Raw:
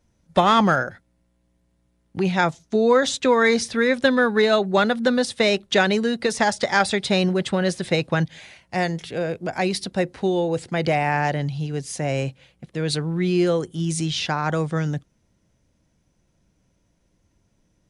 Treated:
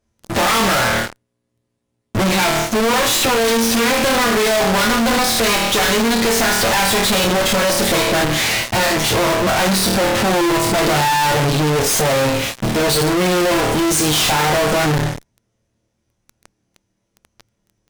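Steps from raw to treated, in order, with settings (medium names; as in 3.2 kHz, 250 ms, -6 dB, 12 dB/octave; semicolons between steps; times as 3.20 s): comb filter that takes the minimum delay 9 ms; flutter echo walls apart 4.5 m, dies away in 0.35 s; valve stage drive 29 dB, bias 0.65; in parallel at -3 dB: fuzz box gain 65 dB, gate -59 dBFS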